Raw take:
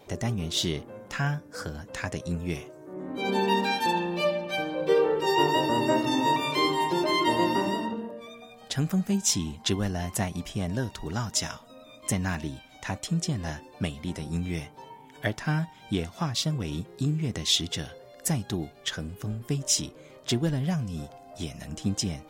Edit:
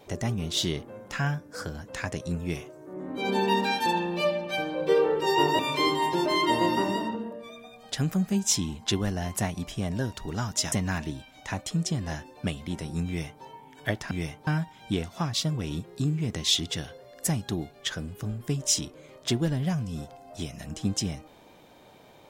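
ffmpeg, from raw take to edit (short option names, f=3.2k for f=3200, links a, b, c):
-filter_complex "[0:a]asplit=5[a][b][c][d][e];[a]atrim=end=5.592[f];[b]atrim=start=6.368:end=11.502[g];[c]atrim=start=12.088:end=15.482[h];[d]atrim=start=14.438:end=14.802[i];[e]atrim=start=15.478[j];[f][g]acrossfade=d=0.004:c1=hsin:c2=hsin[k];[k][h]acrossfade=d=0.004:c1=hsin:c2=hsin[l];[l][i]acrossfade=d=0.004:c1=hsin:c2=hsin[m];[m][j]acrossfade=d=0.004:c1=hsin:c2=hsin"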